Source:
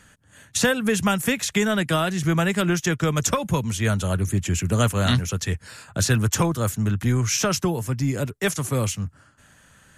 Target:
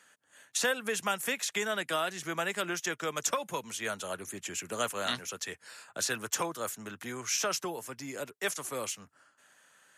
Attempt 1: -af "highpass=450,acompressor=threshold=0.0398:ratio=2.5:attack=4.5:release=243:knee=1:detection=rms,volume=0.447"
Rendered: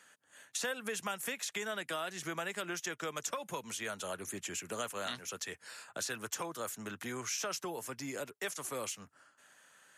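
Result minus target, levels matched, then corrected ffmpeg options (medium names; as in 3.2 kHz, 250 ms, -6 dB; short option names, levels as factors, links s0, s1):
compression: peak gain reduction +9 dB
-af "highpass=450,volume=0.447"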